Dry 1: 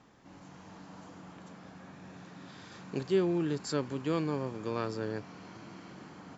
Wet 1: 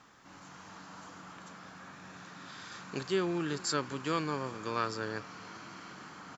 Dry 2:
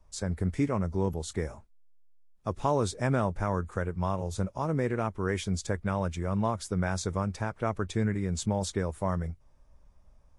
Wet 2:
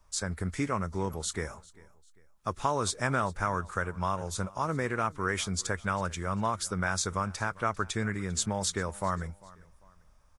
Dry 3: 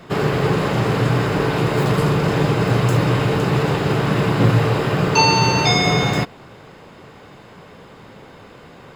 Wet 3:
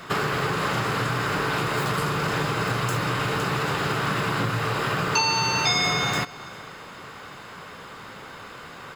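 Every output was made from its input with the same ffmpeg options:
-filter_complex "[0:a]equalizer=f=1.3k:t=o:w=1:g=9,acompressor=threshold=-20dB:ratio=5,highshelf=f=2.3k:g=11.5,asplit=2[a][b];[b]aecho=0:1:397|794:0.0794|0.0278[c];[a][c]amix=inputs=2:normalize=0,volume=-4dB"

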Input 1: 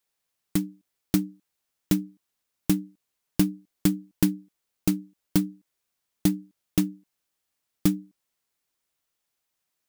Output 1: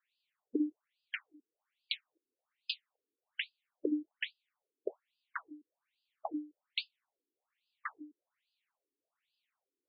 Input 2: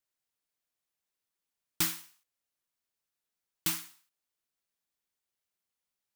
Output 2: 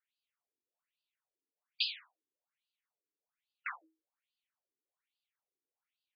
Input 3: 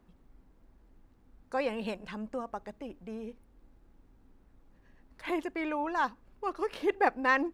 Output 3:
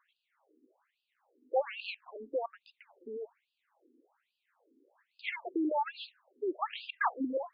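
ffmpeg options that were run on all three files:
-af "afftfilt=real='re*lt(hypot(re,im),0.447)':imag='im*lt(hypot(re,im),0.447)':win_size=1024:overlap=0.75,afftfilt=real='re*between(b*sr/1024,320*pow(3600/320,0.5+0.5*sin(2*PI*1.2*pts/sr))/1.41,320*pow(3600/320,0.5+0.5*sin(2*PI*1.2*pts/sr))*1.41)':imag='im*between(b*sr/1024,320*pow(3600/320,0.5+0.5*sin(2*PI*1.2*pts/sr))/1.41,320*pow(3600/320,0.5+0.5*sin(2*PI*1.2*pts/sr))*1.41)':win_size=1024:overlap=0.75,volume=5dB"

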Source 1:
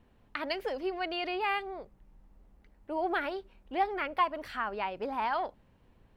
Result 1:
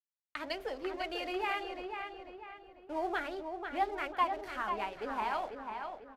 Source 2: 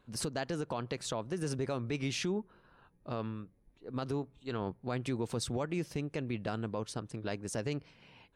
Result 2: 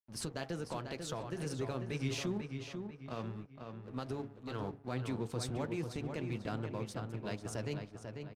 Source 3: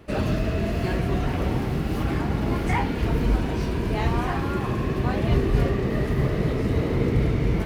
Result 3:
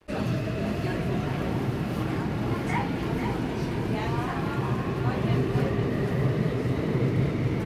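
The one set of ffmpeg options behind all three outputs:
-filter_complex "[0:a]bandreject=f=47.01:t=h:w=4,bandreject=f=94.02:t=h:w=4,bandreject=f=141.03:t=h:w=4,bandreject=f=188.04:t=h:w=4,bandreject=f=235.05:t=h:w=4,bandreject=f=282.06:t=h:w=4,bandreject=f=329.07:t=h:w=4,bandreject=f=376.08:t=h:w=4,bandreject=f=423.09:t=h:w=4,bandreject=f=470.1:t=h:w=4,bandreject=f=517.11:t=h:w=4,bandreject=f=564.12:t=h:w=4,bandreject=f=611.13:t=h:w=4,bandreject=f=658.14:t=h:w=4,bandreject=f=705.15:t=h:w=4,bandreject=f=752.16:t=h:w=4,bandreject=f=799.17:t=h:w=4,bandreject=f=846.18:t=h:w=4,adynamicequalizer=threshold=0.00891:dfrequency=120:dqfactor=2:tfrequency=120:tqfactor=2:attack=5:release=100:ratio=0.375:range=3.5:mode=boostabove:tftype=bell,acrossover=split=110[a][b];[a]acompressor=threshold=-44dB:ratio=6[c];[b]flanger=delay=2.1:depth=5:regen=-54:speed=1.2:shape=triangular[d];[c][d]amix=inputs=2:normalize=0,aeval=exprs='sgn(val(0))*max(abs(val(0))-0.00178,0)':c=same,asplit=2[e][f];[f]adelay=494,lowpass=f=3.6k:p=1,volume=-6dB,asplit=2[g][h];[h]adelay=494,lowpass=f=3.6k:p=1,volume=0.43,asplit=2[i][j];[j]adelay=494,lowpass=f=3.6k:p=1,volume=0.43,asplit=2[k][l];[l]adelay=494,lowpass=f=3.6k:p=1,volume=0.43,asplit=2[m][n];[n]adelay=494,lowpass=f=3.6k:p=1,volume=0.43[o];[g][i][k][m][o]amix=inputs=5:normalize=0[p];[e][p]amix=inputs=2:normalize=0,aresample=32000,aresample=44100,volume=1dB"

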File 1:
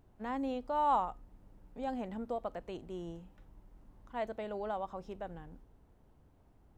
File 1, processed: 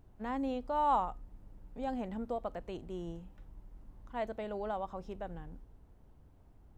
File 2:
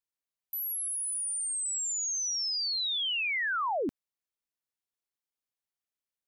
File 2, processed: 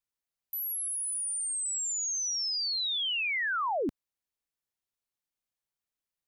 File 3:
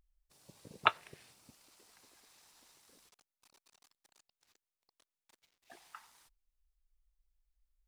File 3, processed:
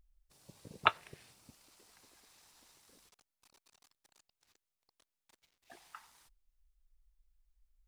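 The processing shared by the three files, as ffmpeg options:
-af "lowshelf=f=120:g=6.5"

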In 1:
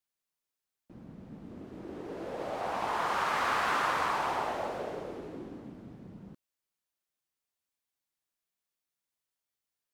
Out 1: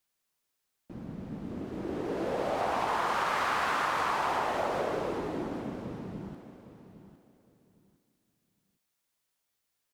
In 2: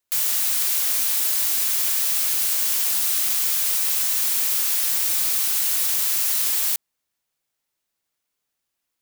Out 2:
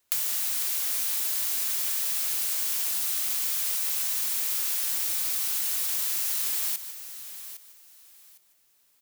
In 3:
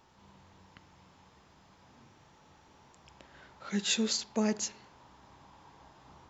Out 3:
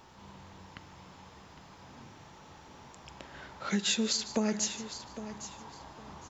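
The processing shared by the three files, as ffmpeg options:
-filter_complex "[0:a]asplit=2[a][b];[b]aecho=0:1:150:0.106[c];[a][c]amix=inputs=2:normalize=0,acompressor=threshold=-34dB:ratio=6,asplit=2[d][e];[e]aecho=0:1:808|1616|2424:0.237|0.0545|0.0125[f];[d][f]amix=inputs=2:normalize=0,volume=7.5dB"

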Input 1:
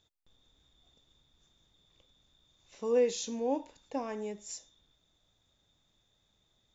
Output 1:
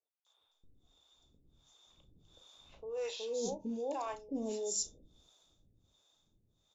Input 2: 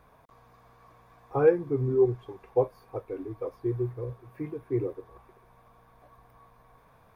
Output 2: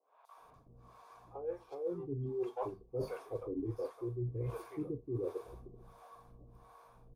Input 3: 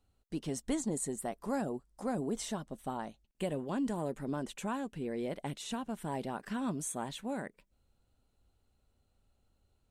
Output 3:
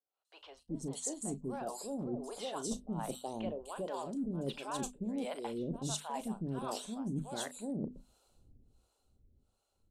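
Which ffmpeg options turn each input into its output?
-filter_complex "[0:a]asplit=2[a][b];[b]asoftclip=type=tanh:threshold=-25.5dB,volume=-10.5dB[c];[a][c]amix=inputs=2:normalize=0,dynaudnorm=f=150:g=31:m=16dB,lowpass=11k,acrossover=split=630|3400[d][e][f];[f]adelay=250[g];[d]adelay=370[h];[h][e][g]amix=inputs=3:normalize=0,acrossover=split=450[i][j];[i]aeval=exprs='val(0)*(1-1/2+1/2*cos(2*PI*1.4*n/s))':c=same[k];[j]aeval=exprs='val(0)*(1-1/2-1/2*cos(2*PI*1.4*n/s))':c=same[l];[k][l]amix=inputs=2:normalize=0,bandreject=f=50:t=h:w=6,bandreject=f=100:t=h:w=6,bandreject=f=150:t=h:w=6,bandreject=f=200:t=h:w=6,bandreject=f=250:t=h:w=6,areverse,acompressor=threshold=-37dB:ratio=16,areverse,equalizer=f=1.9k:t=o:w=0.68:g=-11.5,asplit=2[m][n];[n]adelay=36,volume=-14dB[o];[m][o]amix=inputs=2:normalize=0,adynamicequalizer=threshold=0.00112:dfrequency=2500:dqfactor=0.7:tfrequency=2500:tqfactor=0.7:attack=5:release=100:ratio=0.375:range=1.5:mode=boostabove:tftype=highshelf,volume=2.5dB"

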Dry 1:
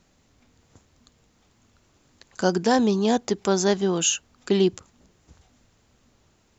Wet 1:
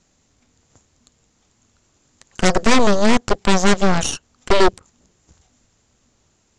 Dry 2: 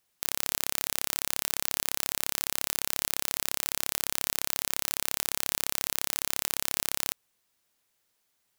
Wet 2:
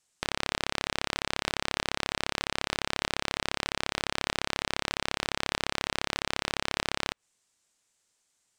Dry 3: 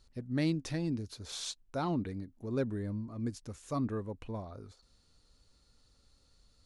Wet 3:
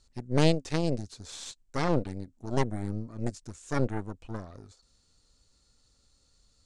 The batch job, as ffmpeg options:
-filter_complex "[0:a]acrossover=split=3300[a][b];[b]acompressor=threshold=-46dB:ratio=4:attack=1:release=60[c];[a][c]amix=inputs=2:normalize=0,aeval=exprs='0.398*(cos(1*acos(clip(val(0)/0.398,-1,1)))-cos(1*PI/2))+0.0398*(cos(3*acos(clip(val(0)/0.398,-1,1)))-cos(3*PI/2))+0.0794*(cos(4*acos(clip(val(0)/0.398,-1,1)))-cos(4*PI/2))+0.0398*(cos(6*acos(clip(val(0)/0.398,-1,1)))-cos(6*PI/2))+0.178*(cos(8*acos(clip(val(0)/0.398,-1,1)))-cos(8*PI/2))':c=same,lowpass=f=7.8k:t=q:w=2.6,volume=2dB"

